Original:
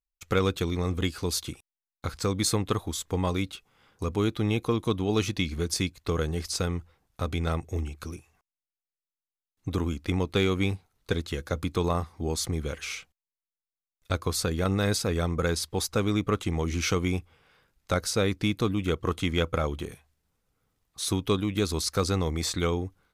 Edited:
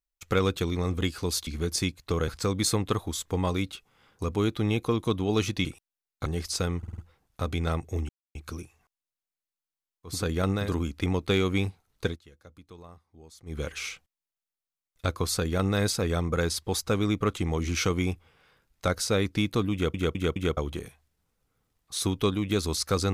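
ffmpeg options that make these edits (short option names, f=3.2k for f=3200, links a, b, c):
-filter_complex "[0:a]asplit=18[a][b][c][d][e][f][g][h][i][j][k][l][m][n][o][p][q][r];[a]atrim=end=1.472[s];[b]atrim=start=5.448:end=6.262[t];[c]atrim=start=2.078:end=5.452[u];[d]atrim=start=1.468:end=2.082[v];[e]atrim=start=6.258:end=6.832[w];[f]atrim=start=6.778:end=6.832[x];[g]atrim=start=6.778:end=6.832[y];[h]atrim=start=6.778:end=6.832[z];[i]atrim=start=6.778:end=7.89,asetpts=PTS-STARTPTS,afade=t=out:st=1.108:d=0.004:c=hsin,apad=pad_dur=0.26[aa];[j]atrim=start=7.89:end=9.81,asetpts=PTS-STARTPTS,afade=t=in:d=0.004:c=hsin[ab];[k]atrim=start=14.25:end=14.97[ac];[l]atrim=start=9.57:end=11.25,asetpts=PTS-STARTPTS,afade=t=out:st=1.54:d=0.14:silence=0.0841395[ad];[m]atrim=start=11.25:end=12.51,asetpts=PTS-STARTPTS,volume=-21.5dB[ae];[n]atrim=start=12.51:end=19.002,asetpts=PTS-STARTPTS,afade=t=in:d=0.14:silence=0.0841395[af];[o]atrim=start=18.788:end=19.002[ag];[p]atrim=start=18.788:end=19.002[ah];[q]atrim=start=18.788:end=19.002[ai];[r]atrim=start=19.628[aj];[s][t]acrossfade=d=0.004:c1=hsin:c2=hsin[ak];[ak][u]acrossfade=d=0.004:c1=hsin:c2=hsin[al];[al][v]acrossfade=d=0.004:c1=hsin:c2=hsin[am];[am][w]acrossfade=d=0.004:c1=hsin:c2=hsin[an];[an][x]acrossfade=d=0.004:c1=hsin:c2=hsin[ao];[ao][y]acrossfade=d=0.004:c1=hsin:c2=hsin[ap];[ap][z]acrossfade=d=0.004:c1=hsin:c2=hsin[aq];[aa][ab]concat=n=2:v=0:a=1[ar];[aq][ar]acrossfade=d=0.004:c1=hsin:c2=hsin[as];[as][ac]acrossfade=d=0.24:c1=tri:c2=tri[at];[ad][ae][af]concat=n=3:v=0:a=1[au];[at][au]acrossfade=d=0.24:c1=tri:c2=tri[av];[av][ag]acrossfade=d=0.004:c1=hsin:c2=hsin[aw];[aw][ah]acrossfade=d=0.004:c1=hsin:c2=hsin[ax];[ax][ai]acrossfade=d=0.004:c1=hsin:c2=hsin[ay];[ay][aj]acrossfade=d=0.004:c1=hsin:c2=hsin"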